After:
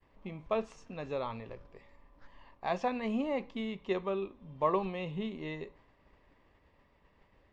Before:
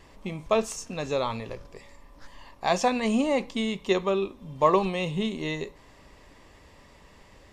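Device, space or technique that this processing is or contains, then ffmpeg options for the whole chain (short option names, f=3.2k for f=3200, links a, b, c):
hearing-loss simulation: -af "lowpass=2.8k,agate=range=-33dB:threshold=-48dB:ratio=3:detection=peak,volume=-8.5dB"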